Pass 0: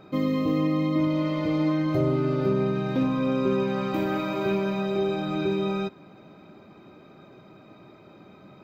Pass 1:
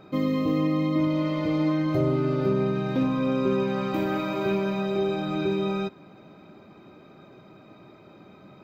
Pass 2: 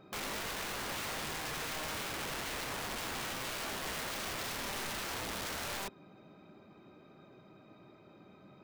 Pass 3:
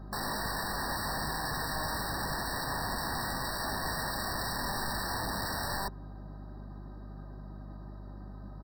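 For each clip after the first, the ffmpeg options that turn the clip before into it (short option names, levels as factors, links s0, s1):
-af anull
-af "aeval=exprs='(mod(21.1*val(0)+1,2)-1)/21.1':c=same,volume=0.398"
-af "aecho=1:1:1.1:0.43,aeval=exprs='val(0)+0.00355*(sin(2*PI*50*n/s)+sin(2*PI*2*50*n/s)/2+sin(2*PI*3*50*n/s)/3+sin(2*PI*4*50*n/s)/4+sin(2*PI*5*50*n/s)/5)':c=same,afftfilt=real='re*eq(mod(floor(b*sr/1024/1900),2),0)':imag='im*eq(mod(floor(b*sr/1024/1900),2),0)':win_size=1024:overlap=0.75,volume=1.88"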